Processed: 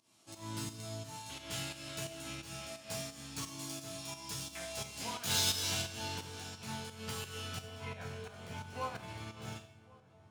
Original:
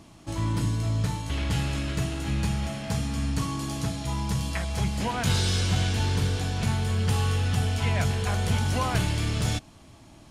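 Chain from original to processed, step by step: tracing distortion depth 0.04 ms; high-pass 320 Hz 6 dB/octave; band-stop 1.9 kHz, Q 16; chord resonator F2 major, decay 0.28 s; filtered feedback delay 550 ms, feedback 77%, low-pass 1.7 kHz, level -15 dB; volume shaper 87 bpm, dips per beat 2, -13 dB, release 203 ms; treble shelf 3.1 kHz +11 dB, from 5.82 s +5.5 dB, from 7.61 s -6.5 dB; Schroeder reverb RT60 0.75 s, combs from 29 ms, DRR 6.5 dB; upward expansion 1.5:1, over -49 dBFS; trim +3.5 dB

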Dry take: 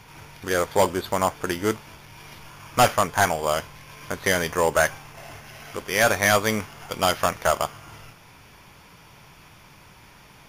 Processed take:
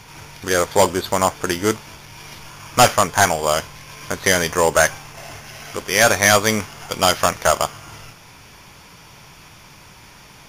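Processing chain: peaking EQ 6.2 kHz +5.5 dB 1.3 oct; trim +4.5 dB

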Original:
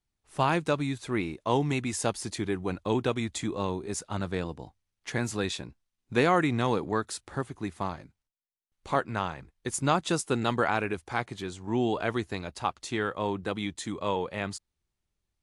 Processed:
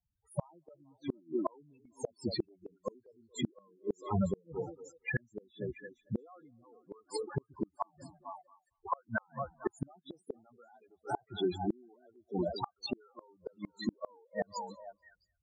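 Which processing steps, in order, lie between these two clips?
high-pass 75 Hz 6 dB/octave; bass shelf 340 Hz -5.5 dB; loudest bins only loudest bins 4; on a send: repeats whose band climbs or falls 227 ms, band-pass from 320 Hz, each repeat 1.4 oct, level -10.5 dB; on the sum: inverted gate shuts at -31 dBFS, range -37 dB; trim +10.5 dB

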